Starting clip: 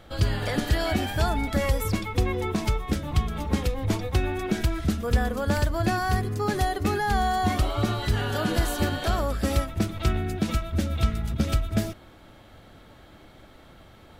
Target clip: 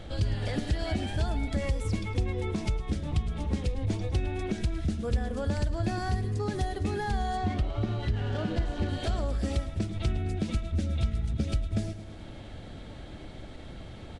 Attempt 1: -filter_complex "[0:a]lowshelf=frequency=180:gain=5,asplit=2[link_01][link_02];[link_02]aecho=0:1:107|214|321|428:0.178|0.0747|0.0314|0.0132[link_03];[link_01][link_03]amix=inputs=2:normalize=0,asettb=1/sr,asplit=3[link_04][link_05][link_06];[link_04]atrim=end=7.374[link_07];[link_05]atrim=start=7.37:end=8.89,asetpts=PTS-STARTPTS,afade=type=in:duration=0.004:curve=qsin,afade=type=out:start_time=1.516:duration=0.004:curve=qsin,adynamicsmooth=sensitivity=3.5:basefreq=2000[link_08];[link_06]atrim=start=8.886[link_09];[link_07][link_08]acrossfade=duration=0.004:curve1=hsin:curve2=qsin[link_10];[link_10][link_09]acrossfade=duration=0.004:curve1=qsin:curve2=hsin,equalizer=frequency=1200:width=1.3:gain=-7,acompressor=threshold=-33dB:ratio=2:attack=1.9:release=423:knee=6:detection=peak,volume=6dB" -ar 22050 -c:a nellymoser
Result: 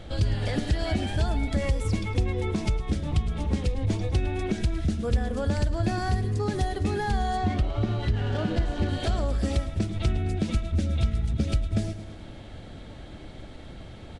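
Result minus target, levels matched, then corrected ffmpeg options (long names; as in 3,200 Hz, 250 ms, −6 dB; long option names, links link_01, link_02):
downward compressor: peak gain reduction −3.5 dB
-filter_complex "[0:a]lowshelf=frequency=180:gain=5,asplit=2[link_01][link_02];[link_02]aecho=0:1:107|214|321|428:0.178|0.0747|0.0314|0.0132[link_03];[link_01][link_03]amix=inputs=2:normalize=0,asettb=1/sr,asplit=3[link_04][link_05][link_06];[link_04]atrim=end=7.374[link_07];[link_05]atrim=start=7.37:end=8.89,asetpts=PTS-STARTPTS,afade=type=in:duration=0.004:curve=qsin,afade=type=out:start_time=1.516:duration=0.004:curve=qsin,adynamicsmooth=sensitivity=3.5:basefreq=2000[link_08];[link_06]atrim=start=8.886[link_09];[link_07][link_08]acrossfade=duration=0.004:curve1=hsin:curve2=qsin[link_10];[link_10][link_09]acrossfade=duration=0.004:curve1=qsin:curve2=hsin,equalizer=frequency=1200:width=1.3:gain=-7,acompressor=threshold=-40dB:ratio=2:attack=1.9:release=423:knee=6:detection=peak,volume=6dB" -ar 22050 -c:a nellymoser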